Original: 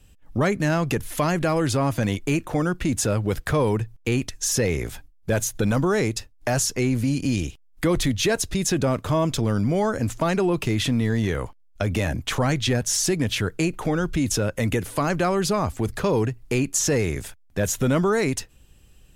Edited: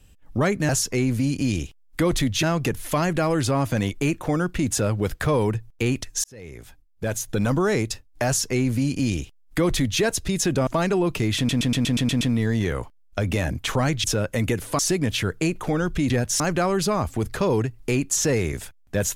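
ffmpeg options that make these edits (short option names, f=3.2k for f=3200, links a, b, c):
-filter_complex "[0:a]asplit=16[a][b][c][d][e][f][g][h][i][j][k][l][m][n][o][p];[a]atrim=end=0.692[q];[b]atrim=start=6.528:end=8.272[r];[c]atrim=start=0.688:end=4.5,asetpts=PTS-STARTPTS,afade=t=out:st=3.808:d=0.004:c=hsin[s];[d]atrim=start=4.5:end=8.932,asetpts=PTS-STARTPTS,afade=t=in:d=1.31[t];[e]atrim=start=10.138:end=10.962[u];[f]atrim=start=10.838:end=10.962[v];[g]atrim=start=10.838:end=10.962[w];[h]atrim=start=10.838:end=10.962[x];[i]atrim=start=10.838:end=10.962[y];[j]atrim=start=10.838:end=10.962[z];[k]atrim=start=10.838:end=10.962[aa];[l]atrim=start=10.838:end=12.672[ab];[m]atrim=start=14.278:end=15.032[ac];[n]atrim=start=12.968:end=14.282[ad];[o]atrim=start=12.668:end=12.972[ae];[p]atrim=start=15.028[af];[q][r]acrossfade=d=0.004:c1=hsin:c2=hsin[ag];[s][t]concat=n=2:v=0:a=1[ah];[ag][ah]acrossfade=d=0.004:c1=hsin:c2=hsin[ai];[ai][u]acrossfade=d=0.004:c1=hsin:c2=hsin[aj];[aj][v]acrossfade=d=0.004:c1=hsin:c2=hsin[ak];[ak][w]acrossfade=d=0.004:c1=hsin:c2=hsin[al];[al][x]acrossfade=d=0.004:c1=hsin:c2=hsin[am];[am][y]acrossfade=d=0.004:c1=hsin:c2=hsin[an];[an][z]acrossfade=d=0.004:c1=hsin:c2=hsin[ao];[ao][aa]acrossfade=d=0.004:c1=hsin:c2=hsin[ap];[ap][ab]acrossfade=d=0.004:c1=hsin:c2=hsin[aq];[aq][ac]acrossfade=d=0.004:c1=hsin:c2=hsin[ar];[ar][ad]acrossfade=d=0.004:c1=hsin:c2=hsin[as];[as][ae]acrossfade=d=0.004:c1=hsin:c2=hsin[at];[at][af]acrossfade=d=0.004:c1=hsin:c2=hsin"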